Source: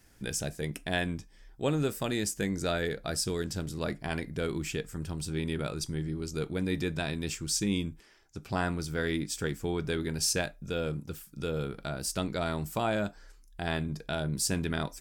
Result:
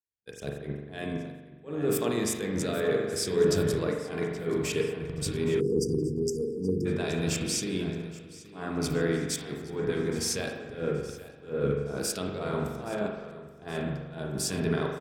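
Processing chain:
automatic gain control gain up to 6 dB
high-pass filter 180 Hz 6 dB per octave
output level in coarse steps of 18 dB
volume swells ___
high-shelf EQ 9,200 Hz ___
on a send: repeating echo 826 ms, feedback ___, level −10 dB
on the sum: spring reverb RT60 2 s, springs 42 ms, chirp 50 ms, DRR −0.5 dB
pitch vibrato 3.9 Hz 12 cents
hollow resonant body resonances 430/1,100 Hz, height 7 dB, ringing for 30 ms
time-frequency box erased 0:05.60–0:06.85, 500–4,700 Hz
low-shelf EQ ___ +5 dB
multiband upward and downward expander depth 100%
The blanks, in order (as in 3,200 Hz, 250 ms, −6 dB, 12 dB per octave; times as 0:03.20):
116 ms, −2.5 dB, 51%, 440 Hz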